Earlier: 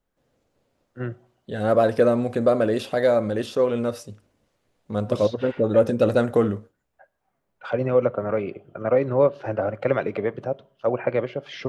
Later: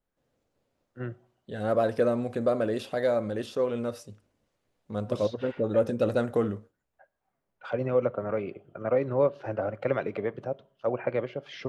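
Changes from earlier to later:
first voice -5.5 dB; second voice -6.5 dB

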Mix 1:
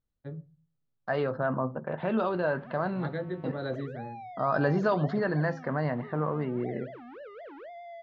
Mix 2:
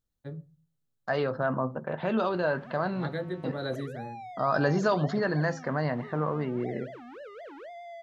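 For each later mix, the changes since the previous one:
master: remove air absorption 210 m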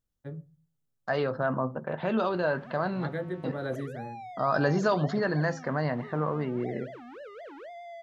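first voice: add bell 4100 Hz -14 dB 0.21 oct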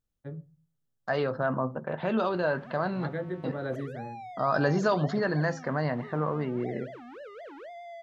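first voice: add high shelf 5000 Hz -10 dB

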